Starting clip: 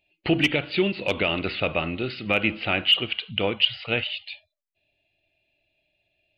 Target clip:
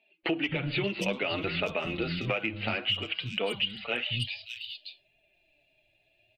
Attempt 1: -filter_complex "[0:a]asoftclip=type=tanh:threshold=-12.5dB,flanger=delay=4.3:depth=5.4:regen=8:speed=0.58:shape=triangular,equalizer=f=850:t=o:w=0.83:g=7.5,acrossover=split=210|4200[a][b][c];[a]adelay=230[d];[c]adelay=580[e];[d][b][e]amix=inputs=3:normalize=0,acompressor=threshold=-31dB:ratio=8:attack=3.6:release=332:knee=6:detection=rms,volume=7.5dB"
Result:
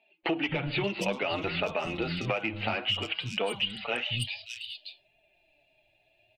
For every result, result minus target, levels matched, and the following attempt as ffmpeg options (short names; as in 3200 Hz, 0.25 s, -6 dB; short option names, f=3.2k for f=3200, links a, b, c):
soft clip: distortion +11 dB; 1000 Hz band +3.5 dB
-filter_complex "[0:a]asoftclip=type=tanh:threshold=-5.5dB,flanger=delay=4.3:depth=5.4:regen=8:speed=0.58:shape=triangular,equalizer=f=850:t=o:w=0.83:g=7.5,acrossover=split=210|4200[a][b][c];[a]adelay=230[d];[c]adelay=580[e];[d][b][e]amix=inputs=3:normalize=0,acompressor=threshold=-31dB:ratio=8:attack=3.6:release=332:knee=6:detection=rms,volume=7.5dB"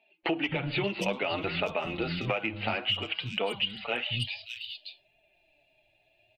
1000 Hz band +3.5 dB
-filter_complex "[0:a]asoftclip=type=tanh:threshold=-5.5dB,flanger=delay=4.3:depth=5.4:regen=8:speed=0.58:shape=triangular,acrossover=split=210|4200[a][b][c];[a]adelay=230[d];[c]adelay=580[e];[d][b][e]amix=inputs=3:normalize=0,acompressor=threshold=-31dB:ratio=8:attack=3.6:release=332:knee=6:detection=rms,volume=7.5dB"